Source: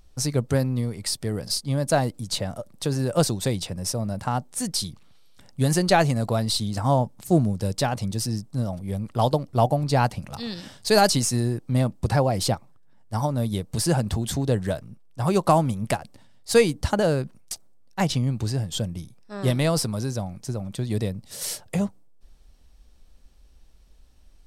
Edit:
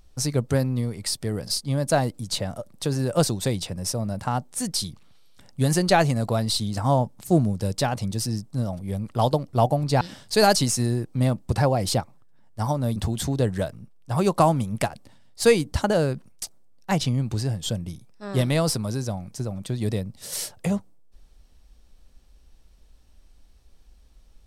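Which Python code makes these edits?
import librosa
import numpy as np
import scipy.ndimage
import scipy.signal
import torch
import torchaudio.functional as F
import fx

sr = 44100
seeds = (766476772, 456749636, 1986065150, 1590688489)

y = fx.edit(x, sr, fx.cut(start_s=10.01, length_s=0.54),
    fx.cut(start_s=13.5, length_s=0.55), tone=tone)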